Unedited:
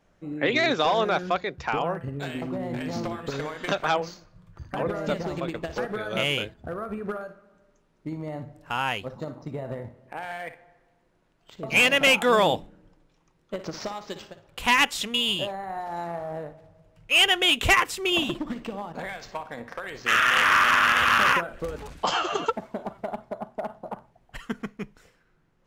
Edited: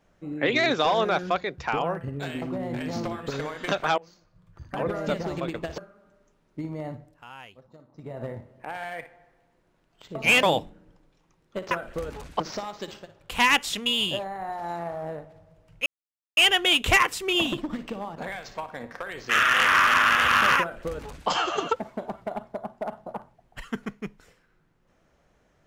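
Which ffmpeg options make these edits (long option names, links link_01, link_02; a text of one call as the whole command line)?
ffmpeg -i in.wav -filter_complex "[0:a]asplit=9[link_01][link_02][link_03][link_04][link_05][link_06][link_07][link_08][link_09];[link_01]atrim=end=3.98,asetpts=PTS-STARTPTS,afade=type=out:start_time=3.976:duration=0.004:curve=hsin:silence=0.0749894[link_10];[link_02]atrim=start=3.98:end=5.782,asetpts=PTS-STARTPTS,afade=type=in:duration=0.89:silence=0.0749894[link_11];[link_03]atrim=start=7.258:end=8.72,asetpts=PTS-STARTPTS,afade=type=out:start_time=1.112:duration=0.35:silence=0.141254[link_12];[link_04]atrim=start=8.72:end=9.39,asetpts=PTS-STARTPTS,volume=-17dB[link_13];[link_05]atrim=start=9.39:end=11.912,asetpts=PTS-STARTPTS,afade=type=in:duration=0.35:silence=0.141254[link_14];[link_06]atrim=start=12.398:end=13.682[link_15];[link_07]atrim=start=21.368:end=22.062[link_16];[link_08]atrim=start=13.678:end=17.14,asetpts=PTS-STARTPTS,afade=type=out:start_time=3.458:duration=0.004:curve=hsin,apad=pad_dur=0.51[link_17];[link_09]atrim=start=17.14,asetpts=PTS-STARTPTS,afade=type=in:duration=0.004:curve=hsin[link_18];[link_10][link_11]concat=n=2:v=0:a=1[link_19];[link_12][link_13][link_14]concat=n=3:v=0:a=1[link_20];[link_19][link_20]acrossfade=duration=0.004:curve1=hsin:curve2=hsin[link_21];[link_21][link_15]acrossfade=duration=0.004:curve1=hsin:curve2=hsin[link_22];[link_22][link_16]acrossfade=duration=0.004:curve1=hsin:curve2=hsin[link_23];[link_17][link_18]concat=n=2:v=0:a=1[link_24];[link_23][link_24]acrossfade=duration=0.004:curve1=hsin:curve2=hsin" out.wav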